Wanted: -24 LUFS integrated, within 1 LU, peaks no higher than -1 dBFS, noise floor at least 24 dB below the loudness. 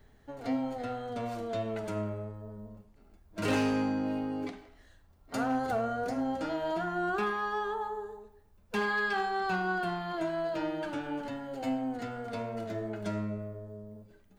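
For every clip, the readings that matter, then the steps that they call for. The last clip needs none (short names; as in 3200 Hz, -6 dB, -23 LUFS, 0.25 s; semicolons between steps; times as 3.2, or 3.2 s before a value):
clipped 0.3%; flat tops at -23.0 dBFS; loudness -33.5 LUFS; peak -23.0 dBFS; loudness target -24.0 LUFS
-> clip repair -23 dBFS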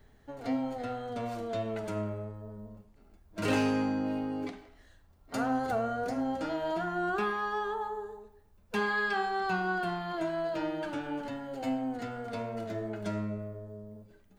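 clipped 0.0%; loudness -33.5 LUFS; peak -17.5 dBFS; loudness target -24.0 LUFS
-> gain +9.5 dB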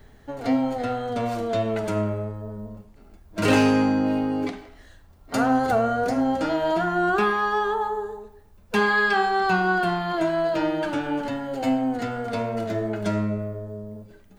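loudness -24.0 LUFS; peak -8.0 dBFS; noise floor -51 dBFS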